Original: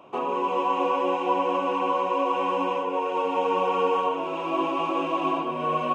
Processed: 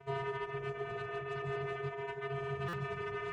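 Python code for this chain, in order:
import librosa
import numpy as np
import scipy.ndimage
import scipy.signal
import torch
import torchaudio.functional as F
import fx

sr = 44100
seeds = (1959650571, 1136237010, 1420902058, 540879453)

y = fx.lowpass(x, sr, hz=1200.0, slope=6)
y = fx.over_compress(y, sr, threshold_db=-28.0, ratio=-0.5)
y = fx.low_shelf(y, sr, hz=490.0, db=-6.0)
y = (np.mod(10.0 ** (20.5 / 20.0) * y + 1.0, 2.0) - 1.0) / 10.0 ** (20.5 / 20.0)
y = fx.vocoder(y, sr, bands=4, carrier='square', carrier_hz=137.0)
y = fx.dereverb_blind(y, sr, rt60_s=0.63)
y = fx.echo_feedback(y, sr, ms=64, feedback_pct=60, wet_db=-16)
y = 10.0 ** (-25.0 / 20.0) * np.tanh(y / 10.0 ** (-25.0 / 20.0))
y = fx.peak_eq(y, sr, hz=200.0, db=-5.0, octaves=1.6)
y = fx.stretch_vocoder_free(y, sr, factor=0.56)
y = y + 10.0 ** (-8.5 / 20.0) * np.pad(y, (int(141 * sr / 1000.0), 0))[:len(y)]
y = fx.buffer_glitch(y, sr, at_s=(2.68,), block=256, repeats=8)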